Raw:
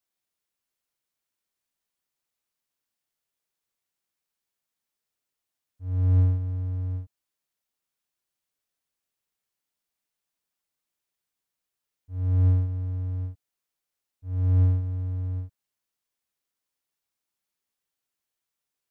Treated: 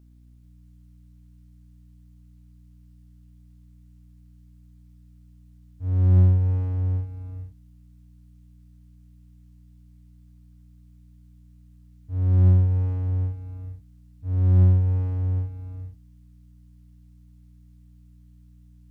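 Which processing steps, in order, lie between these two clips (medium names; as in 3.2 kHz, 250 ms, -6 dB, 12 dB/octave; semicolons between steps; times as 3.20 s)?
in parallel at -1 dB: compression, threshold -30 dBFS, peak gain reduction 13 dB; on the sum: hum 60 Hz, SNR 25 dB; gated-style reverb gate 490 ms rising, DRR 5.5 dB; loudspeaker Doppler distortion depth 0.6 ms; trim +1 dB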